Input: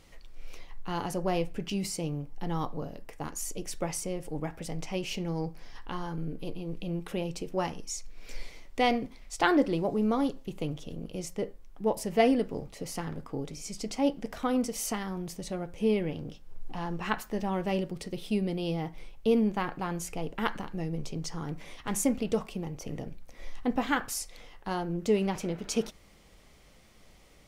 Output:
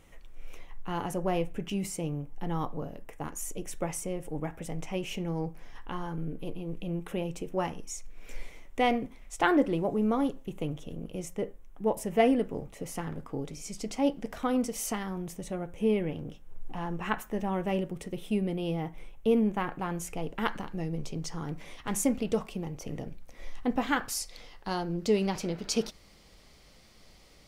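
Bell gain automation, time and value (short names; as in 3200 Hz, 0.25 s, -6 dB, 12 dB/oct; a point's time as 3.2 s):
bell 4600 Hz 0.52 oct
12.74 s -12.5 dB
13.44 s -4.5 dB
14.95 s -4.5 dB
15.5 s -13 dB
19.52 s -13 dB
20.47 s -2 dB
23.83 s -2 dB
24.32 s +7.5 dB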